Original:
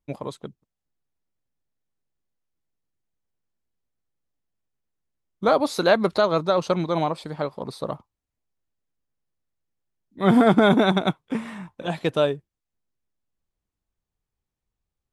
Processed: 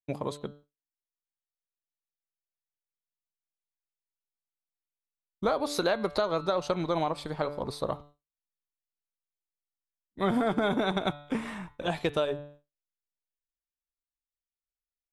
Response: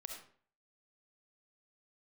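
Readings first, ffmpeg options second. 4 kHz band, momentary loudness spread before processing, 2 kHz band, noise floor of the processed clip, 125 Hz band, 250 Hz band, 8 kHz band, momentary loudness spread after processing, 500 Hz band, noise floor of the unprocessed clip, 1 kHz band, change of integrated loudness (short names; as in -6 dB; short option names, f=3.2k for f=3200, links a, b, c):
-6.0 dB, 18 LU, -7.5 dB, under -85 dBFS, -9.0 dB, -9.5 dB, -2.5 dB, 10 LU, -7.5 dB, -85 dBFS, -7.0 dB, -8.5 dB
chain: -af "bandreject=f=145.7:t=h:w=4,bandreject=f=291.4:t=h:w=4,bandreject=f=437.1:t=h:w=4,bandreject=f=582.8:t=h:w=4,bandreject=f=728.5:t=h:w=4,bandreject=f=874.2:t=h:w=4,bandreject=f=1.0199k:t=h:w=4,bandreject=f=1.1656k:t=h:w=4,bandreject=f=1.3113k:t=h:w=4,bandreject=f=1.457k:t=h:w=4,bandreject=f=1.6027k:t=h:w=4,bandreject=f=1.7484k:t=h:w=4,bandreject=f=1.8941k:t=h:w=4,bandreject=f=2.0398k:t=h:w=4,bandreject=f=2.1855k:t=h:w=4,bandreject=f=2.3312k:t=h:w=4,bandreject=f=2.4769k:t=h:w=4,bandreject=f=2.6226k:t=h:w=4,bandreject=f=2.7683k:t=h:w=4,bandreject=f=2.914k:t=h:w=4,bandreject=f=3.0597k:t=h:w=4,bandreject=f=3.2054k:t=h:w=4,bandreject=f=3.3511k:t=h:w=4,bandreject=f=3.4968k:t=h:w=4,bandreject=f=3.6425k:t=h:w=4,bandreject=f=3.7882k:t=h:w=4,bandreject=f=3.9339k:t=h:w=4,bandreject=f=4.0796k:t=h:w=4,bandreject=f=4.2253k:t=h:w=4,agate=range=-33dB:threshold=-45dB:ratio=3:detection=peak,asubboost=boost=6.5:cutoff=62,acompressor=threshold=-24dB:ratio=6"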